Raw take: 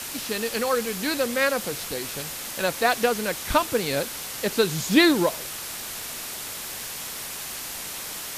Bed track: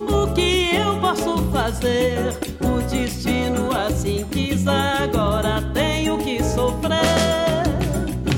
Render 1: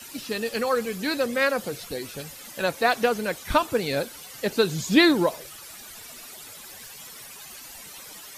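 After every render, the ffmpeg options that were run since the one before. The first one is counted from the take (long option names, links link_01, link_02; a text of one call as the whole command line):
ffmpeg -i in.wav -af "afftdn=noise_reduction=13:noise_floor=-35" out.wav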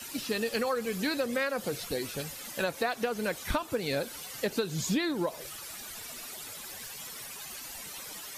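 ffmpeg -i in.wav -af "acompressor=threshold=-26dB:ratio=16" out.wav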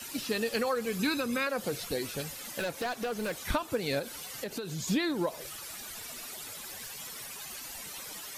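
ffmpeg -i in.wav -filter_complex "[0:a]asettb=1/sr,asplit=3[link_01][link_02][link_03];[link_01]atrim=end=0.994[link_04];[link_02]atrim=start=0.99:end=1.47,asetpts=PTS-STARTPTS,afade=type=in:duration=0.004:curve=qsin,afade=type=out:start_time=0.476:duration=0.004:curve=qsin,aecho=1:1:0.8:0.58,atrim=end_sample=21168[link_05];[link_03]atrim=start=1.466[link_06];[link_04][link_05]acrossfade=duration=0.004:curve1=hsin:curve2=qsin[link_07];[link_07][link_06]acrossfade=duration=0.004:curve1=qsin:curve2=hsin,asettb=1/sr,asplit=3[link_08][link_09][link_10];[link_08]atrim=end=2.594[link_11];[link_09]atrim=start=2.59:end=3.37,asetpts=PTS-STARTPTS,afade=type=in:duration=0.004:curve=qsin,afade=type=out:start_time=0.776:duration=0.004:curve=qsin,volume=29dB,asoftclip=hard,volume=-29dB[link_12];[link_10]atrim=start=3.366[link_13];[link_11][link_12]acrossfade=duration=0.004:curve1=hsin:curve2=qsin[link_14];[link_14][link_13]acrossfade=duration=0.004:curve1=qsin:curve2=hsin,asettb=1/sr,asplit=3[link_15][link_16][link_17];[link_15]atrim=end=3.994[link_18];[link_16]atrim=start=3.99:end=4.88,asetpts=PTS-STARTPTS,afade=type=in:duration=0.004:curve=qsin,afade=type=out:start_time=0.886:duration=0.004:curve=qsin,acompressor=threshold=-33dB:ratio=4:attack=3.2:release=140:knee=1:detection=peak[link_19];[link_17]atrim=start=4.876[link_20];[link_18][link_19]acrossfade=duration=0.004:curve1=hsin:curve2=qsin[link_21];[link_21][link_20]acrossfade=duration=0.004:curve1=qsin:curve2=hsin" out.wav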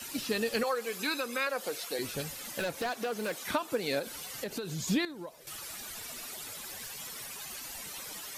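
ffmpeg -i in.wav -filter_complex "[0:a]asettb=1/sr,asplit=3[link_01][link_02][link_03];[link_01]atrim=end=0.634[link_04];[link_02]atrim=start=0.63:end=1.99,asetpts=PTS-STARTPTS,afade=type=in:duration=0.004:curve=qsin,afade=type=out:start_time=1.356:duration=0.004:curve=qsin,highpass=420[link_05];[link_03]atrim=start=1.986[link_06];[link_04][link_05]acrossfade=duration=0.004:curve1=hsin:curve2=qsin[link_07];[link_07][link_06]acrossfade=duration=0.004:curve1=qsin:curve2=hsin,asettb=1/sr,asplit=3[link_08][link_09][link_10];[link_08]atrim=end=2.894[link_11];[link_09]atrim=start=2.89:end=4.07,asetpts=PTS-STARTPTS,afade=type=in:duration=0.004:curve=qsin,afade=type=out:start_time=1.176:duration=0.004:curve=qsin,highpass=200[link_12];[link_10]atrim=start=4.066[link_13];[link_11][link_12]acrossfade=duration=0.004:curve1=hsin:curve2=qsin[link_14];[link_14][link_13]acrossfade=duration=0.004:curve1=qsin:curve2=hsin,asplit=3[link_15][link_16][link_17];[link_15]atrim=end=5.052[link_18];[link_16]atrim=start=5.048:end=5.472,asetpts=PTS-STARTPTS,volume=-12dB[link_19];[link_17]atrim=start=5.468[link_20];[link_18][link_19]acrossfade=duration=0.004:curve1=hsin:curve2=hsin[link_21];[link_21][link_20]acrossfade=duration=0.004:curve1=hsin:curve2=hsin" out.wav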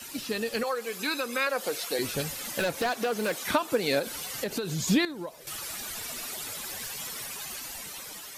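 ffmpeg -i in.wav -af "dynaudnorm=framelen=500:gausssize=5:maxgain=5.5dB" out.wav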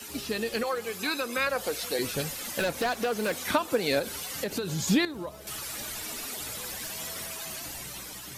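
ffmpeg -i in.wav -i bed.wav -filter_complex "[1:a]volume=-29.5dB[link_01];[0:a][link_01]amix=inputs=2:normalize=0" out.wav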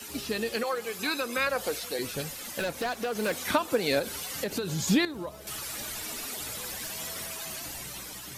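ffmpeg -i in.wav -filter_complex "[0:a]asettb=1/sr,asplit=3[link_01][link_02][link_03];[link_01]atrim=end=0.534[link_04];[link_02]atrim=start=0.53:end=0.99,asetpts=PTS-STARTPTS,afade=type=in:duration=0.004:curve=qsin,afade=type=out:start_time=0.456:duration=0.004:curve=qsin,highpass=frequency=170:poles=1[link_05];[link_03]atrim=start=0.986[link_06];[link_04][link_05]acrossfade=duration=0.004:curve1=hsin:curve2=qsin[link_07];[link_07][link_06]acrossfade=duration=0.004:curve1=qsin:curve2=hsin,asplit=3[link_08][link_09][link_10];[link_08]atrim=end=1.792[link_11];[link_09]atrim=start=1.788:end=3.152,asetpts=PTS-STARTPTS,volume=-3dB[link_12];[link_10]atrim=start=3.148[link_13];[link_11][link_12]acrossfade=duration=0.004:curve1=hsin:curve2=hsin[link_14];[link_14][link_13]acrossfade=duration=0.004:curve1=hsin:curve2=hsin" out.wav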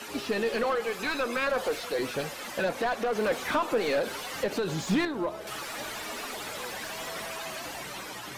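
ffmpeg -i in.wav -filter_complex "[0:a]asplit=2[link_01][link_02];[link_02]highpass=frequency=720:poles=1,volume=24dB,asoftclip=type=tanh:threshold=-11.5dB[link_03];[link_01][link_03]amix=inputs=2:normalize=0,lowpass=frequency=1100:poles=1,volume=-6dB,flanger=delay=1.6:depth=7.2:regen=86:speed=0.66:shape=sinusoidal" out.wav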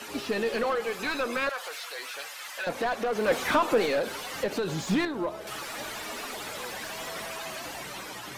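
ffmpeg -i in.wav -filter_complex "[0:a]asettb=1/sr,asplit=3[link_01][link_02][link_03];[link_01]atrim=end=1.494[link_04];[link_02]atrim=start=1.49:end=2.67,asetpts=PTS-STARTPTS,afade=type=in:duration=0.004:curve=qsin,afade=type=out:start_time=1.176:duration=0.004:curve=qsin,highpass=1100[link_05];[link_03]atrim=start=2.666[link_06];[link_04][link_05]acrossfade=duration=0.004:curve1=hsin:curve2=qsin[link_07];[link_07][link_06]acrossfade=duration=0.004:curve1=qsin:curve2=hsin,asplit=3[link_08][link_09][link_10];[link_08]atrim=end=3.282[link_11];[link_09]atrim=start=3.278:end=3.862,asetpts=PTS-STARTPTS,volume=3.5dB[link_12];[link_10]atrim=start=3.858[link_13];[link_11][link_12]acrossfade=duration=0.004:curve1=hsin:curve2=hsin[link_14];[link_14][link_13]acrossfade=duration=0.004:curve1=hsin:curve2=hsin" out.wav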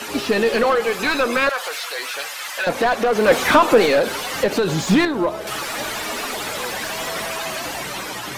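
ffmpeg -i in.wav -af "volume=10.5dB" out.wav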